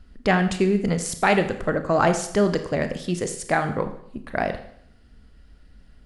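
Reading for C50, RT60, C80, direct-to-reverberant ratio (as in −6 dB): 11.0 dB, 0.65 s, 13.0 dB, 8.0 dB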